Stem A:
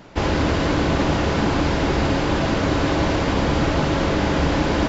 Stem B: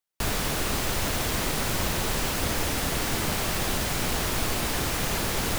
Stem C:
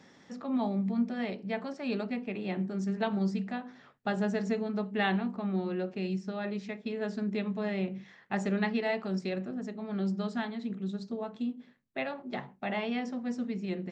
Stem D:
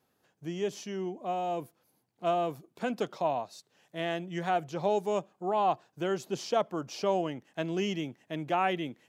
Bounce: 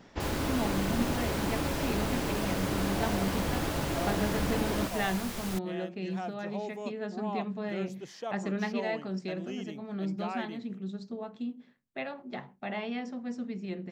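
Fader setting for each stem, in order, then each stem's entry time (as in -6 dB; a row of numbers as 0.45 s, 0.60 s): -12.5 dB, -11.5 dB, -2.5 dB, -10.0 dB; 0.00 s, 0.00 s, 0.00 s, 1.70 s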